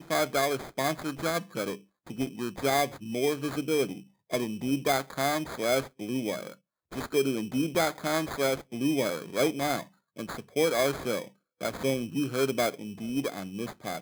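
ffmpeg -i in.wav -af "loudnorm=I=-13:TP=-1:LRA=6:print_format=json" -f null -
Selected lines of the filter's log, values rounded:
"input_i" : "-30.1",
"input_tp" : "-12.4",
"input_lra" : "2.7",
"input_thresh" : "-40.4",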